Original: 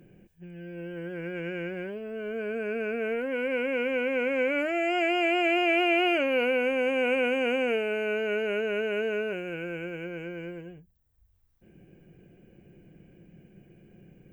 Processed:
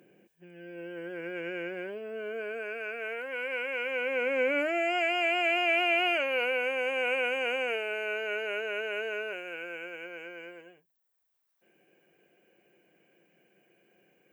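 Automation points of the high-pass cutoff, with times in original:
2.16 s 340 Hz
2.81 s 760 Hz
3.81 s 760 Hz
4.57 s 280 Hz
5.05 s 630 Hz

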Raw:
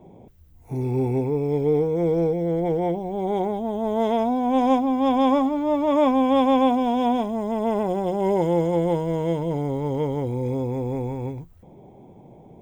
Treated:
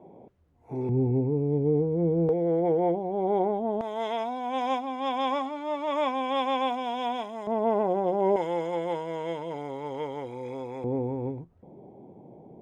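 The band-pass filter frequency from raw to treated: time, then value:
band-pass filter, Q 0.59
620 Hz
from 0.89 s 160 Hz
from 2.29 s 560 Hz
from 3.81 s 2.5 kHz
from 7.47 s 690 Hz
from 8.36 s 1.9 kHz
from 10.84 s 370 Hz

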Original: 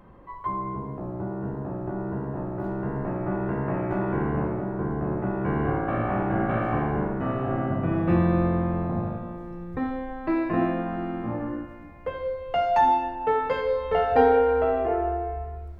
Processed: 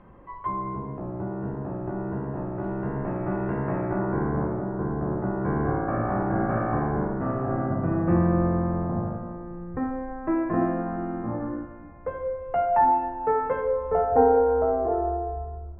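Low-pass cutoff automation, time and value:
low-pass 24 dB/octave
3.49 s 3.1 kHz
4.06 s 1.7 kHz
13.48 s 1.7 kHz
14.15 s 1.2 kHz

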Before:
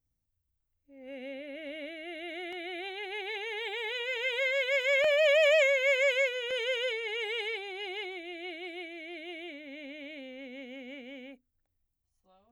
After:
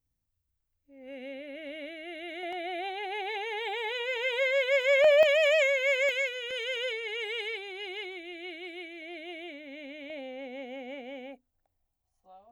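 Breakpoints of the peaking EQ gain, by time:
peaking EQ 740 Hz 0.86 oct
+0.5 dB
from 2.43 s +9.5 dB
from 5.23 s -1 dB
from 6.09 s -10.5 dB
from 6.76 s -3.5 dB
from 9.02 s +3 dB
from 10.10 s +14 dB

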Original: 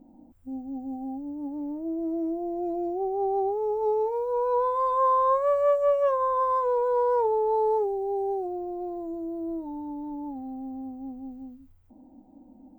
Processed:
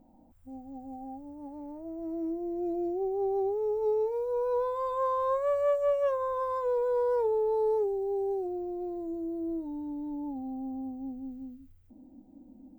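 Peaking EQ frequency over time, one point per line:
peaking EQ -10 dB 1.1 oct
1.78 s 290 Hz
2.69 s 900 Hz
9.97 s 900 Hz
10.70 s 2.1 kHz
11.28 s 870 Hz

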